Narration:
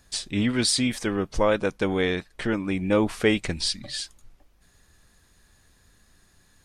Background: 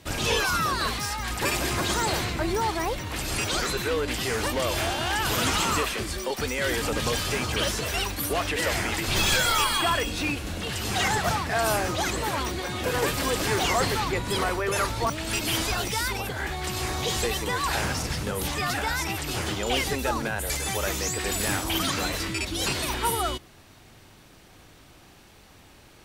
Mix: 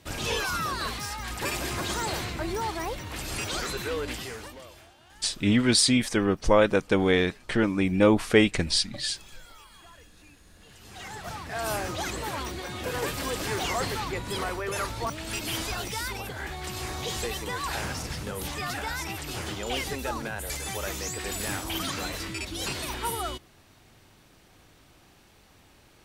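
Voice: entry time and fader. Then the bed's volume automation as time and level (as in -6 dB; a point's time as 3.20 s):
5.10 s, +2.0 dB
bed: 4.10 s -4.5 dB
4.93 s -28.5 dB
10.34 s -28.5 dB
11.73 s -5 dB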